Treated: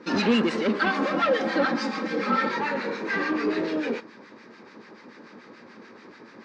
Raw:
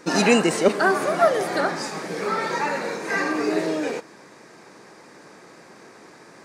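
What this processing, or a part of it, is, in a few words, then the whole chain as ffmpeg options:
guitar amplifier with harmonic tremolo: -filter_complex "[0:a]acrossover=split=1100[s0][s1];[s0]aeval=exprs='val(0)*(1-0.7/2+0.7/2*cos(2*PI*6.9*n/s))':c=same[s2];[s1]aeval=exprs='val(0)*(1-0.7/2-0.7/2*cos(2*PI*6.9*n/s))':c=same[s3];[s2][s3]amix=inputs=2:normalize=0,asoftclip=type=tanh:threshold=0.0794,highpass=93,equalizer=f=150:t=q:w=4:g=-7,equalizer=f=230:t=q:w=4:g=9,equalizer=f=700:t=q:w=4:g=-8,lowpass=f=4600:w=0.5412,lowpass=f=4600:w=1.3066,asettb=1/sr,asplit=3[s4][s5][s6];[s4]atrim=end=0.814[s7];[s5]atrim=start=0.81:end=2.49,asetpts=PTS-STARTPTS,afade=t=in:d=0.004:c=qsin,afade=t=out:st=1.676:d=0.004:c=qsin,aecho=1:1:3.8:0.95,atrim=end_sample=74088[s8];[s6]atrim=start=2.486[s9];[s7][s8]acrossfade=d=0.004:c1=hsin:c2=qsin[s10];[s10][s9]acrossfade=d=0.004:c1=qsin:c2=hsin,volume=1.41"

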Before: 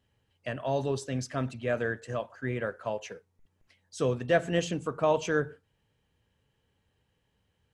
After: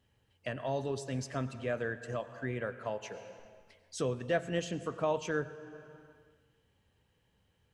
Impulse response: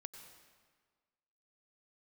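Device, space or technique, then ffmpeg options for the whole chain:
ducked reverb: -filter_complex "[0:a]asplit=3[s0][s1][s2];[1:a]atrim=start_sample=2205[s3];[s1][s3]afir=irnorm=-1:irlink=0[s4];[s2]apad=whole_len=340998[s5];[s4][s5]sidechaincompress=threshold=0.0141:ratio=8:attack=24:release=514,volume=3.76[s6];[s0][s6]amix=inputs=2:normalize=0,volume=0.376"

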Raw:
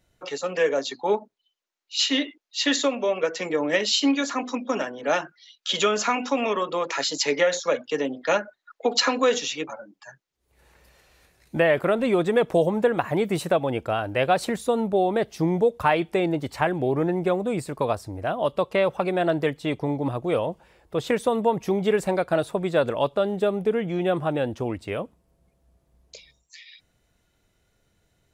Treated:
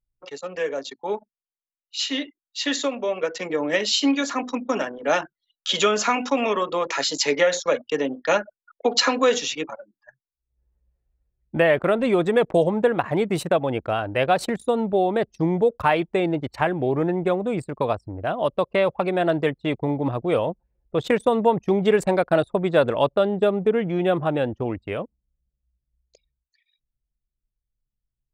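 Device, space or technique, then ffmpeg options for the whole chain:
voice memo with heavy noise removal: -af "anlmdn=2.51,dynaudnorm=f=230:g=31:m=3.76,volume=0.596"

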